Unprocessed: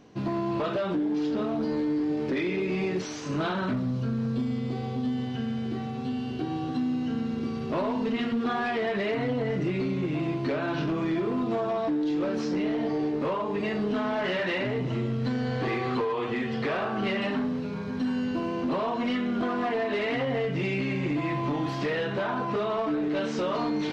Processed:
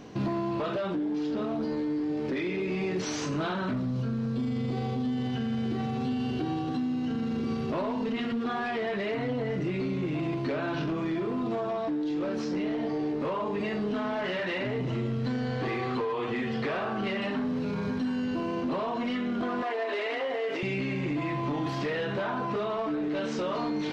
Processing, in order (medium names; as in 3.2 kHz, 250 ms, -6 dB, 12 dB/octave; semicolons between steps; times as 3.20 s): 19.62–20.63 s: high-pass 360 Hz 24 dB/octave; peak limiter -30.5 dBFS, peak gain reduction 11.5 dB; gain riding; trim +6 dB